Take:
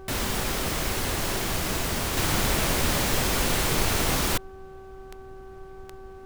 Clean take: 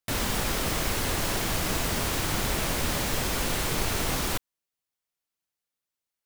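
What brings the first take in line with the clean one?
de-click; de-hum 382.9 Hz, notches 4; noise print and reduce 30 dB; gain correction -3.5 dB, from 2.17

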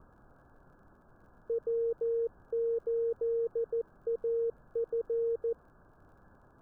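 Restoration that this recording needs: de-click; noise print and reduce 19 dB

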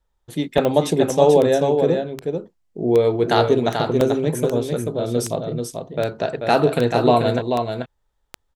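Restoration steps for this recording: de-click; interpolate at 0.58/1.1/4.01, 1.9 ms; inverse comb 0.437 s -5.5 dB

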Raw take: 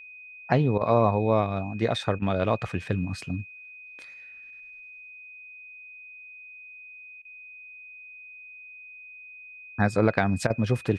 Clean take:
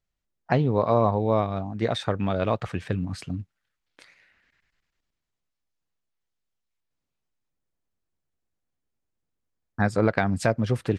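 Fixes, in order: notch 2500 Hz, Q 30; interpolate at 0.78/2.19/7.22/10.47, 29 ms

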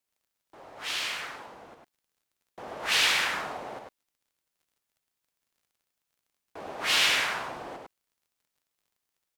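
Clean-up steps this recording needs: de-click; inverse comb 0.101 s -4 dB

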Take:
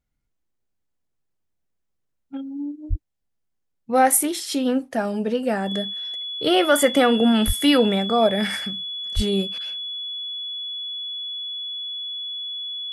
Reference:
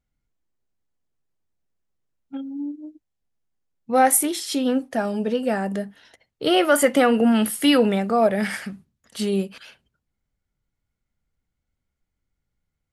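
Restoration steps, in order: notch 3400 Hz, Q 30; 2.89–3.01 HPF 140 Hz 24 dB/oct; 7.46–7.58 HPF 140 Hz 24 dB/oct; 9.15–9.27 HPF 140 Hz 24 dB/oct

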